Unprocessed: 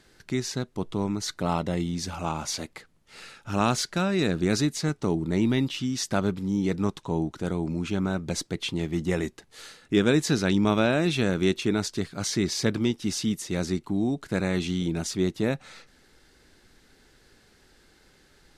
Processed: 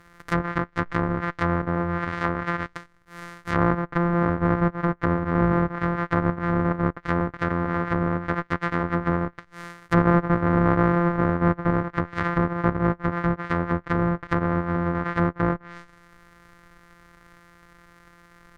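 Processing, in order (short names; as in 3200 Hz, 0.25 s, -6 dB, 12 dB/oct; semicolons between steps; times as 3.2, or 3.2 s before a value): sample sorter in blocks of 256 samples; band shelf 1500 Hz +11 dB 1.2 oct; treble ducked by the level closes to 860 Hz, closed at -20.5 dBFS; gain +3 dB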